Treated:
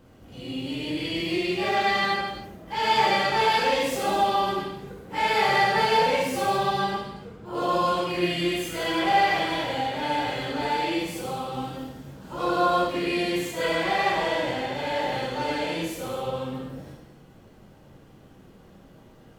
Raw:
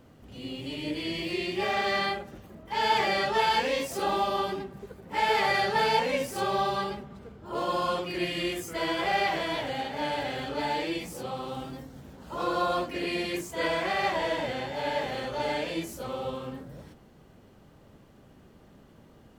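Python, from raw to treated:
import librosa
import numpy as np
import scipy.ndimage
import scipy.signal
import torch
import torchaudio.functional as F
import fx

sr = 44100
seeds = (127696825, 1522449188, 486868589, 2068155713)

y = fx.rev_gated(x, sr, seeds[0], gate_ms=350, shape='falling', drr_db=-3.0)
y = y * librosa.db_to_amplitude(-1.0)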